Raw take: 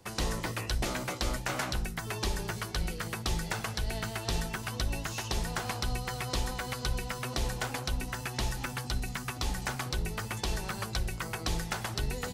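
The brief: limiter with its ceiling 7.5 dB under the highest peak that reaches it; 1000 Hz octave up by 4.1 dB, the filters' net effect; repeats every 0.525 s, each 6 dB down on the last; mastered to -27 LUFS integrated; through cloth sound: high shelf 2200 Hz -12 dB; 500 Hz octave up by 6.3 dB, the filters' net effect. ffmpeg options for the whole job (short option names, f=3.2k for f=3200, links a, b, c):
-af "equalizer=f=500:t=o:g=7,equalizer=f=1k:t=o:g=5.5,alimiter=limit=-22dB:level=0:latency=1,highshelf=f=2.2k:g=-12,aecho=1:1:525|1050|1575|2100|2625|3150:0.501|0.251|0.125|0.0626|0.0313|0.0157,volume=7.5dB"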